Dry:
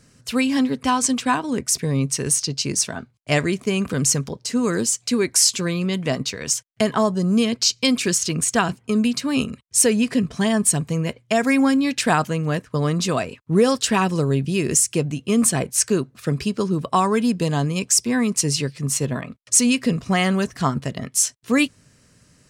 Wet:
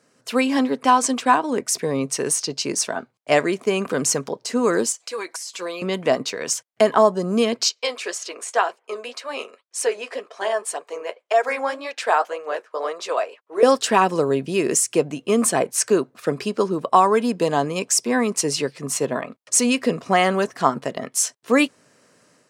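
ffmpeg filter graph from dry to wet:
-filter_complex "[0:a]asettb=1/sr,asplit=3[s0][s1][s2];[s0]atrim=end=4.924[s3];[s1]atrim=start=4.92:end=5.82,asetpts=PTS-STARTPTS,afade=t=in:d=0.004:c=qsin,afade=t=out:st=0.896:d=0.004:c=qsin,highpass=570,aecho=1:1:6.1:0.72,atrim=end_sample=39690,acompressor=threshold=0.0447:ratio=16:attack=3.2:release=140:knee=1:detection=peak[s4];[s2]atrim=start=5.816[s5];[s3][s4]acrossfade=d=0.004:c1=hsin:c2=qsin[s6];[s6][s5]acrossfade=d=0.004:c1=qsin:c2=hsin,asettb=1/sr,asplit=3[s7][s8][s9];[s7]atrim=end=7.694[s10];[s8]atrim=start=7.69:end=13.63,asetpts=PTS-STARTPTS,afade=t=in:d=0.004:c=qsin,afade=t=out:st=5.936:d=0.004:c=qsin,highpass=f=450:w=0.5412,highpass=f=450:w=1.3066,highshelf=f=9300:g=-11.5,flanger=delay=1.6:depth=9.5:regen=-43:speed=1.9:shape=sinusoidal[s11];[s9]atrim=start=13.626[s12];[s10][s11]acrossfade=d=0.004:c1=hsin:c2=qsin[s13];[s13][s12]acrossfade=d=0.004:c1=qsin:c2=hsin,highpass=690,tiltshelf=f=920:g=10,dynaudnorm=f=150:g=3:m=2,volume=1.19"

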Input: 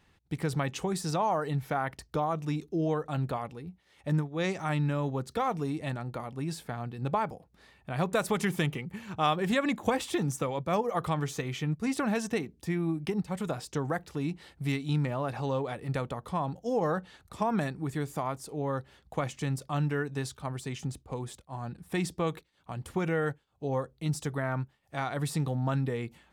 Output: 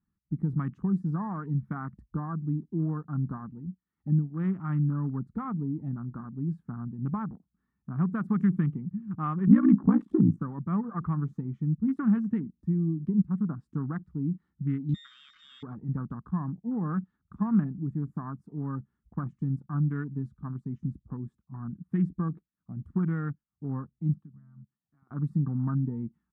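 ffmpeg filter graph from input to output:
-filter_complex "[0:a]asettb=1/sr,asplit=3[s0][s1][s2];[s0]atrim=end=9.474[s3];[s1]atrim=start=9.47:end=10.38,asetpts=PTS-STARTPTS,afade=t=in:d=0.004:c=qsin,afade=t=out:st=0.906:d=0.004:c=qsin,equalizer=f=300:w=0.45:g=11,aeval=exprs='val(0)*sin(2*PI*29*n/s)':c=same[s4];[s2]atrim=start=10.376[s5];[s3][s4]acrossfade=d=0.004:c1=hsin:c2=qsin[s6];[s6][s5]acrossfade=d=0.004:c1=qsin:c2=hsin,asettb=1/sr,asplit=3[s7][s8][s9];[s7]atrim=end=14.944[s10];[s8]atrim=start=14.94:end=15.63,asetpts=PTS-STARTPTS,afade=t=in:d=0.004:c=qsin,afade=t=out:st=0.686:d=0.004:c=qsin,aeval=exprs='val(0)+0.5*0.00562*sgn(val(0))':c=same,equalizer=f=940:w=0.74:g=-3,lowpass=f=3200:t=q:w=0.5098,lowpass=f=3200:t=q:w=0.6013,lowpass=f=3200:t=q:w=0.9,lowpass=f=3200:t=q:w=2.563,afreqshift=-3800[s11];[s9]atrim=start=15.626[s12];[s10][s11]acrossfade=d=0.004:c1=hsin:c2=qsin[s13];[s13][s12]acrossfade=d=0.004:c1=qsin:c2=hsin,asettb=1/sr,asplit=3[s14][s15][s16];[s14]atrim=end=24.144[s17];[s15]atrim=start=24.14:end=25.11,asetpts=PTS-STARTPTS,afade=t=in:d=0.004:c=qsin,afade=t=out:st=0.966:d=0.004:c=qsin,highpass=110,lowpass=2400,acompressor=threshold=0.00282:ratio=3:attack=3.2:release=140:knee=1:detection=peak[s18];[s16]atrim=start=25.106[s19];[s17][s18]acrossfade=d=0.004:c1=hsin:c2=qsin[s20];[s20][s19]acrossfade=d=0.004:c1=qsin:c2=hsin,afwtdn=0.0141,firequalizer=gain_entry='entry(120,0);entry(200,9);entry(530,-22);entry(1200,-2);entry(2500,-23);entry(4500,-26)':delay=0.05:min_phase=1"

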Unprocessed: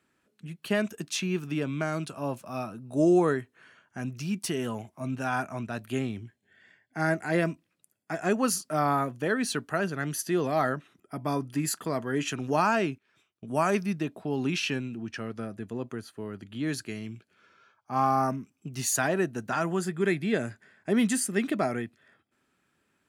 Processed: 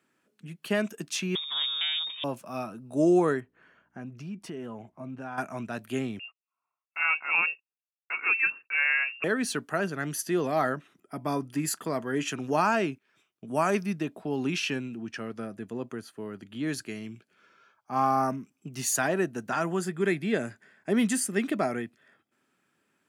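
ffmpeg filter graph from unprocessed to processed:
-filter_complex "[0:a]asettb=1/sr,asplit=3[s0][s1][s2];[s0]atrim=end=1.354[s3];[s1]atrim=start=1.35:end=2.24,asetpts=PTS-STARTPTS,afade=t=in:d=0.004:c=qsin,afade=t=out:st=0.886:d=0.004:c=qsin,aeval=exprs='if(lt(val(0),0),0.251*val(0),val(0))':c=same,lowshelf=f=150:g=8.5,lowpass=f=3100:t=q:w=0.5098,lowpass=f=3100:t=q:w=0.6013,lowpass=f=3100:t=q:w=0.9,lowpass=f=3100:t=q:w=2.563,afreqshift=-3700[s4];[s2]atrim=start=2.236[s5];[s3][s4]acrossfade=d=0.004:c1=hsin:c2=qsin[s6];[s6][s5]acrossfade=d=0.004:c1=qsin:c2=hsin,asettb=1/sr,asplit=3[s7][s8][s9];[s7]atrim=end=3.404[s10];[s8]atrim=start=3.4:end=5.38,asetpts=PTS-STARTPTS,afade=t=in:d=0.004:c=qsin,afade=t=out:st=1.976:d=0.004:c=qsin,lowpass=f=1300:p=1,acompressor=threshold=0.0158:ratio=2.5:attack=3.2:release=140:knee=1:detection=peak,aeval=exprs='val(0)+0.000316*(sin(2*PI*60*n/s)+sin(2*PI*2*60*n/s)/2+sin(2*PI*3*60*n/s)/3+sin(2*PI*4*60*n/s)/4+sin(2*PI*5*60*n/s)/5)':c=same[s11];[s9]atrim=start=5.376[s12];[s10][s11]acrossfade=d=0.004:c1=hsin:c2=qsin[s13];[s13][s12]acrossfade=d=0.004:c1=qsin:c2=hsin,asettb=1/sr,asplit=3[s14][s15][s16];[s14]atrim=end=6.194[s17];[s15]atrim=start=6.19:end=9.24,asetpts=PTS-STARTPTS,afade=t=in:d=0.004:c=qsin,afade=t=out:st=3.046:d=0.004:c=qsin,agate=range=0.0398:threshold=0.002:ratio=16:release=100:detection=peak,lowpass=f=2500:t=q:w=0.5098,lowpass=f=2500:t=q:w=0.6013,lowpass=f=2500:t=q:w=0.9,lowpass=f=2500:t=q:w=2.563,afreqshift=-2900[s18];[s16]atrim=start=9.236[s19];[s17][s18]acrossfade=d=0.004:c1=hsin:c2=qsin[s20];[s20][s19]acrossfade=d=0.004:c1=qsin:c2=hsin,highpass=140,equalizer=f=4000:w=6.5:g=-3"

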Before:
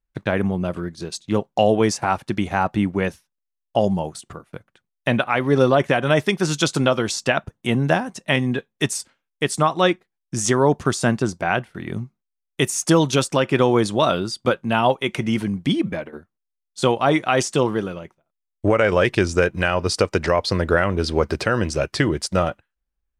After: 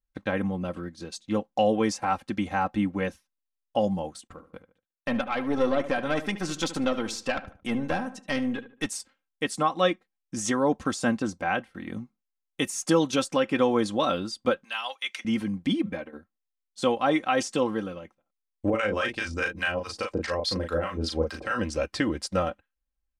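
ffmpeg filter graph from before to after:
-filter_complex "[0:a]asettb=1/sr,asplit=3[s0][s1][s2];[s0]atrim=end=4.274[s3];[s1]atrim=start=4.27:end=8.86,asetpts=PTS-STARTPTS,afade=t=in:d=0.004:c=qsin,afade=t=out:st=4.586:d=0.004:c=qsin,agate=range=0.158:threshold=0.00355:ratio=16:release=100:detection=peak,aeval=exprs='(tanh(3.16*val(0)+0.4)-tanh(0.4))/3.16':c=same,asplit=2[s4][s5];[s5]adelay=74,lowpass=f=2800:p=1,volume=0.224,asplit=2[s6][s7];[s7]adelay=74,lowpass=f=2800:p=1,volume=0.34,asplit=2[s8][s9];[s9]adelay=74,lowpass=f=2800:p=1,volume=0.34[s10];[s4][s6][s8][s10]amix=inputs=4:normalize=0,atrim=end_sample=202419[s11];[s2]atrim=start=8.856[s12];[s3][s11]acrossfade=d=0.004:c1=hsin:c2=qsin[s13];[s13][s12]acrossfade=d=0.004:c1=qsin:c2=hsin,asettb=1/sr,asplit=3[s14][s15][s16];[s14]atrim=end=14.644[s17];[s15]atrim=start=14.64:end=15.25,asetpts=PTS-STARTPTS,afade=t=in:d=0.004:c=qsin,afade=t=out:st=0.606:d=0.004:c=qsin,highpass=1500,equalizer=f=5000:w=1.1:g=6[s18];[s16]atrim=start=15.246[s19];[s17][s18]acrossfade=d=0.004:c1=hsin:c2=qsin[s20];[s20][s19]acrossfade=d=0.004:c1=qsin:c2=hsin,asettb=1/sr,asplit=3[s21][s22][s23];[s21]atrim=end=18.704[s24];[s22]atrim=start=18.7:end=21.59,asetpts=PTS-STARTPTS,afade=t=in:d=0.004:c=qsin,afade=t=out:st=2.886:d=0.004:c=qsin,highshelf=f=3500:g=4.5,acrossover=split=750[s25][s26];[s25]aeval=exprs='val(0)*(1-1/2+1/2*cos(2*PI*4.8*n/s))':c=same[s27];[s26]aeval=exprs='val(0)*(1-1/2-1/2*cos(2*PI*4.8*n/s))':c=same[s28];[s27][s28]amix=inputs=2:normalize=0,asplit=2[s29][s30];[s30]adelay=37,volume=0.668[s31];[s29][s31]amix=inputs=2:normalize=0,atrim=end_sample=127449[s32];[s23]atrim=start=21.586[s33];[s24][s32]acrossfade=d=0.004:c1=hsin:c2=qsin[s34];[s34][s33]acrossfade=d=0.004:c1=qsin:c2=hsin,highshelf=f=7100:g=-4.5,aecho=1:1:3.8:0.66,volume=0.422"

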